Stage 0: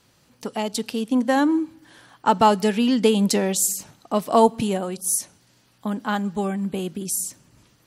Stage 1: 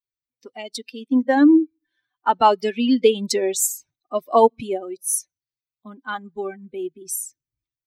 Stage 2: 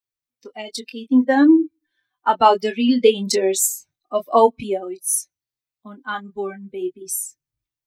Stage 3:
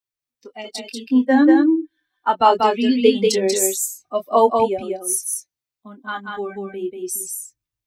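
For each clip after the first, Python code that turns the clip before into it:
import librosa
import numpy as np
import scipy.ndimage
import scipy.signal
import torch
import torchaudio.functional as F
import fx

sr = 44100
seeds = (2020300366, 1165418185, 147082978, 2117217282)

y1 = fx.bin_expand(x, sr, power=2.0)
y1 = fx.low_shelf_res(y1, sr, hz=230.0, db=-7.5, q=3.0)
y1 = y1 * 10.0 ** (3.0 / 20.0)
y2 = fx.chorus_voices(y1, sr, voices=4, hz=0.41, base_ms=23, depth_ms=3.5, mix_pct=30)
y2 = y2 * 10.0 ** (4.5 / 20.0)
y3 = y2 + 10.0 ** (-3.5 / 20.0) * np.pad(y2, (int(189 * sr / 1000.0), 0))[:len(y2)]
y3 = y3 * 10.0 ** (-1.0 / 20.0)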